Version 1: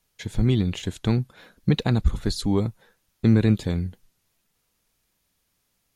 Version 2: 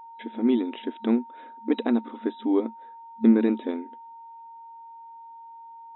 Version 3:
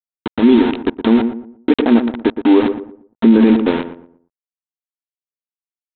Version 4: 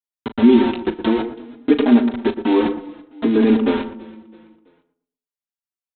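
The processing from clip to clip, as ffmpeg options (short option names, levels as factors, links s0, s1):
-af "afftfilt=real='re*between(b*sr/4096,220,3900)':imag='im*between(b*sr/4096,220,3900)':win_size=4096:overlap=0.75,aemphasis=mode=reproduction:type=riaa,aeval=exprs='val(0)+0.01*sin(2*PI*920*n/s)':c=same,volume=0.794"
-filter_complex "[0:a]aresample=8000,aeval=exprs='val(0)*gte(abs(val(0)),0.0316)':c=same,aresample=44100,asplit=2[s0][s1];[s1]adelay=117,lowpass=f=1100:p=1,volume=0.316,asplit=2[s2][s3];[s3]adelay=117,lowpass=f=1100:p=1,volume=0.32,asplit=2[s4][s5];[s5]adelay=117,lowpass=f=1100:p=1,volume=0.32,asplit=2[s6][s7];[s7]adelay=117,lowpass=f=1100:p=1,volume=0.32[s8];[s0][s2][s4][s6][s8]amix=inputs=5:normalize=0,alimiter=level_in=5.31:limit=0.891:release=50:level=0:latency=1,volume=0.891"
-filter_complex "[0:a]asplit=2[s0][s1];[s1]adelay=37,volume=0.237[s2];[s0][s2]amix=inputs=2:normalize=0,aecho=1:1:330|660|990:0.075|0.0337|0.0152,asplit=2[s3][s4];[s4]adelay=4.4,afreqshift=-0.59[s5];[s3][s5]amix=inputs=2:normalize=1"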